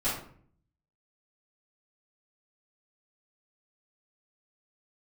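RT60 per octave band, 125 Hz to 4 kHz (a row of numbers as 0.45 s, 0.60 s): 0.90 s, 0.75 s, 0.60 s, 0.50 s, 0.45 s, 0.35 s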